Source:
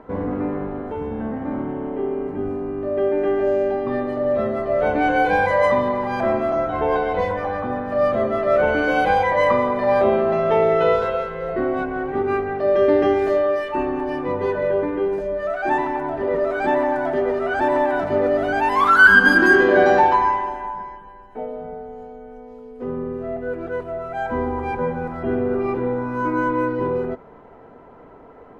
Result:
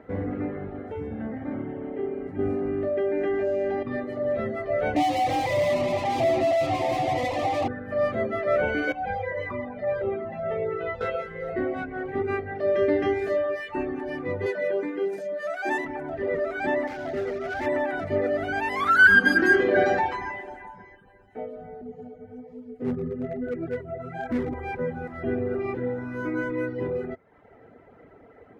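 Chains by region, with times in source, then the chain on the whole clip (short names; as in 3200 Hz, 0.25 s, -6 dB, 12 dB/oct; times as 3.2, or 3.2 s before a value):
2.39–3.83 bell 110 Hz -5 dB 0.63 oct + fast leveller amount 70%
4.96–7.68 overdrive pedal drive 35 dB, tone 1000 Hz, clips at -6.5 dBFS + fixed phaser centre 300 Hz, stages 8
8.92–11.01 LPF 1400 Hz 6 dB/oct + cascading flanger falling 1.5 Hz
14.46–15.85 HPF 190 Hz 24 dB/oct + tone controls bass -1 dB, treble +11 dB
16.87–17.66 CVSD 32 kbps + high shelf 2600 Hz -10 dB + overloaded stage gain 19 dB
21.81–24.54 bell 180 Hz +13 dB 2.2 oct + flange 1.2 Hz, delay 2.9 ms, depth 8.4 ms, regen +31% + hard clip -17.5 dBFS
whole clip: HPF 46 Hz; reverb removal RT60 0.71 s; thirty-one-band EQ 100 Hz +7 dB, 1000 Hz -12 dB, 2000 Hz +7 dB; gain -4 dB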